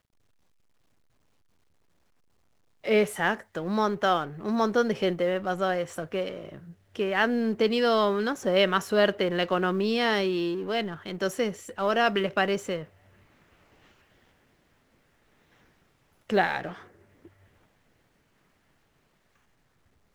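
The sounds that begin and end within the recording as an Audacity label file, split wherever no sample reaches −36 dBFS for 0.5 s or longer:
2.840000	12.840000	sound
16.300000	16.730000	sound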